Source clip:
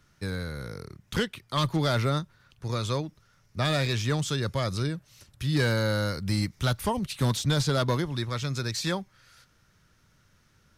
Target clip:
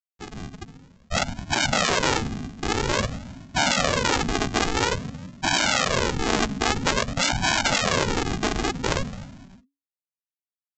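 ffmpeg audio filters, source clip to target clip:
-filter_complex "[0:a]asplit=2[s0][s1];[s1]acrusher=bits=4:mode=log:mix=0:aa=0.000001,volume=0.316[s2];[s0][s2]amix=inputs=2:normalize=0,afftfilt=real='hypot(re,im)*cos(2*PI*random(0))':imag='hypot(re,im)*sin(2*PI*random(1))':win_size=512:overlap=0.75,asetrate=70004,aresample=44100,atempo=0.629961,afftfilt=real='re*gte(hypot(re,im),0.0562)':imag='im*gte(hypot(re,im),0.0562)':win_size=1024:overlap=0.75,highpass=280,equalizer=f=460:t=q:w=4:g=-5,equalizer=f=760:t=q:w=4:g=-10,equalizer=f=1100:t=q:w=4:g=6,lowpass=f=2000:w=0.5412,lowpass=f=2000:w=1.3066,asplit=7[s3][s4][s5][s6][s7][s8][s9];[s4]adelay=104,afreqshift=80,volume=0.119[s10];[s5]adelay=208,afreqshift=160,volume=0.0759[s11];[s6]adelay=312,afreqshift=240,volume=0.0484[s12];[s7]adelay=416,afreqshift=320,volume=0.0313[s13];[s8]adelay=520,afreqshift=400,volume=0.02[s14];[s9]adelay=624,afreqshift=480,volume=0.0127[s15];[s3][s10][s11][s12][s13][s14][s15]amix=inputs=7:normalize=0,aresample=16000,acrusher=samples=30:mix=1:aa=0.000001:lfo=1:lforange=18:lforate=0.5,aresample=44100,afftfilt=real='re*lt(hypot(re,im),0.0355)':imag='im*lt(hypot(re,im),0.0355)':win_size=1024:overlap=0.75,dynaudnorm=f=270:g=5:m=5.01,afreqshift=-280,alimiter=level_in=6.68:limit=0.891:release=50:level=0:latency=1,volume=0.501"

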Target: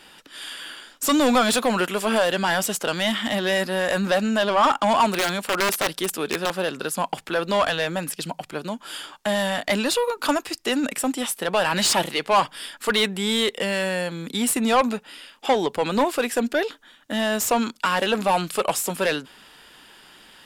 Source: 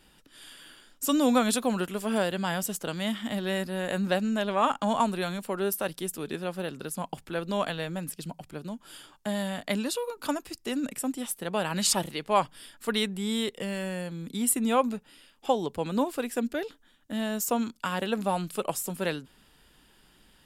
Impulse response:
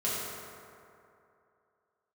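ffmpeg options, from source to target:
-filter_complex "[0:a]asettb=1/sr,asplit=3[s0][s1][s2];[s0]atrim=end=5.094[s3];[s1]atrim=start=5.09:end=6.56,asetpts=PTS-STARTPTS,afade=t=in:d=0.004:c=qsin,afade=t=out:st=1.466:d=0.004:c=qsin,aeval=exprs='(mod(15*val(0)+1,2)-1)/15':c=same[s4];[s2]atrim=start=6.556[s5];[s3][s4]acrossfade=d=0.004:c1=hsin:c2=qsin[s6];[s6][s5]acrossfade=d=0.004:c1=qsin:c2=hsin,asplit=2[s7][s8];[s8]highpass=f=720:p=1,volume=11.2,asoftclip=type=tanh:threshold=0.355[s9];[s7][s9]amix=inputs=2:normalize=0,lowpass=f=4700:p=1,volume=0.501"

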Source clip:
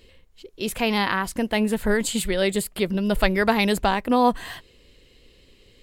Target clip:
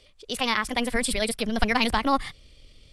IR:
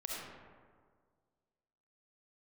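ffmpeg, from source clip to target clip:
-filter_complex "[0:a]acrossover=split=250|6200[s0][s1][s2];[s0]aeval=exprs='clip(val(0),-1,0.0178)':c=same[s3];[s3][s1][s2]amix=inputs=3:normalize=0,asubboost=boost=4:cutoff=200,asetrate=87759,aresample=44100,tiltshelf=f=970:g=-4.5,asetrate=24750,aresample=44100,atempo=1.7818,volume=0.708"

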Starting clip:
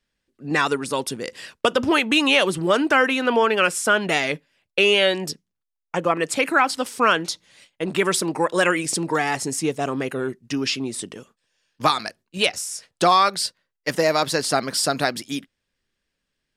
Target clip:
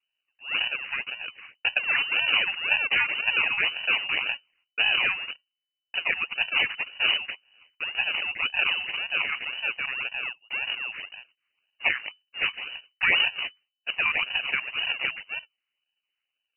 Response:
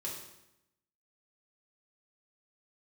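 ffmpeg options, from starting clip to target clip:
-af "acrusher=samples=34:mix=1:aa=0.000001:lfo=1:lforange=34:lforate=1.9,lowpass=f=2600:t=q:w=0.5098,lowpass=f=2600:t=q:w=0.6013,lowpass=f=2600:t=q:w=0.9,lowpass=f=2600:t=q:w=2.563,afreqshift=-3000,volume=0.501"

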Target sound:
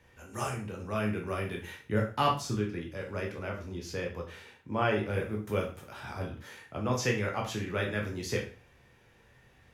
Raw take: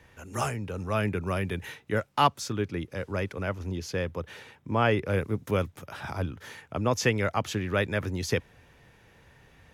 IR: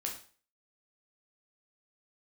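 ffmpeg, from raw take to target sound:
-filter_complex "[0:a]asettb=1/sr,asplit=3[s0][s1][s2];[s0]atrim=end=1.794[s3];[s1]atrim=start=1.79:end=2.56,asetpts=PTS-STARTPTS,afade=t=in:d=0.004:c=qsin,afade=t=out:st=0.766:d=0.004:c=qsin,lowshelf=f=230:g=9.5[s4];[s2]atrim=start=2.556[s5];[s3][s4]acrossfade=d=0.004:c1=hsin:c2=qsin[s6];[s6][s5]acrossfade=d=0.004:c1=qsin:c2=hsin[s7];[1:a]atrim=start_sample=2205,asetrate=48510,aresample=44100[s8];[s7][s8]afir=irnorm=-1:irlink=0,volume=0.631"

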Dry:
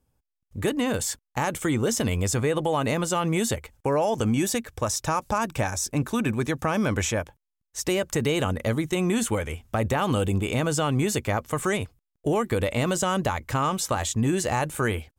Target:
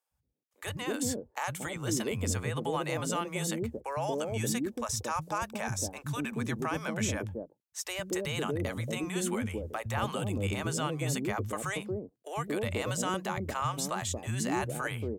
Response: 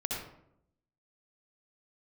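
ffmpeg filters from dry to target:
-filter_complex "[0:a]highpass=50,acrossover=split=190|570[s0][s1][s2];[s0]adelay=110[s3];[s1]adelay=230[s4];[s3][s4][s2]amix=inputs=3:normalize=0,volume=0.501"

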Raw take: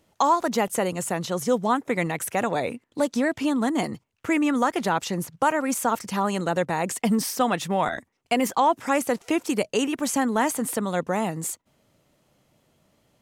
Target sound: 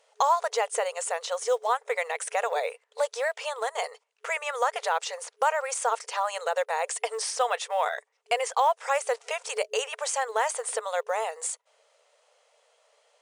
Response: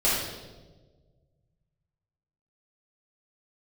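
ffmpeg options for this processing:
-filter_complex "[0:a]afftfilt=real='re*between(b*sr/4096,430,10000)':imag='im*between(b*sr/4096,430,10000)':win_size=4096:overlap=0.75,asplit=2[s0][s1];[s1]acompressor=threshold=0.0158:ratio=10,volume=1.19[s2];[s0][s2]amix=inputs=2:normalize=0,acrusher=bits=9:mode=log:mix=0:aa=0.000001,volume=0.668"

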